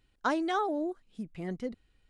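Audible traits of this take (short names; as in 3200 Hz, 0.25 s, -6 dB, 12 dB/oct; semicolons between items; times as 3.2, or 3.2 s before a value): noise floor -71 dBFS; spectral tilt -4.0 dB/oct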